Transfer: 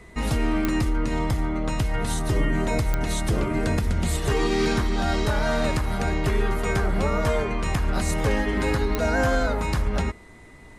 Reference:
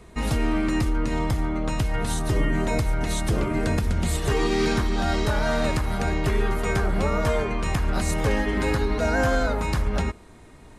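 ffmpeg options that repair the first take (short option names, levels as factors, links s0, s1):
-af "adeclick=t=4,bandreject=f=2000:w=30"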